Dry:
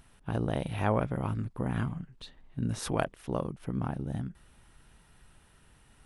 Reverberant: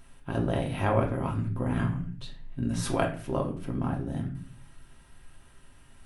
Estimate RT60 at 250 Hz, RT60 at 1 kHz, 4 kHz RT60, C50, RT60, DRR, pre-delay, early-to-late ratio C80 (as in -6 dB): 0.65 s, 0.40 s, 0.35 s, 9.5 dB, 0.45 s, 0.0 dB, 3 ms, 14.0 dB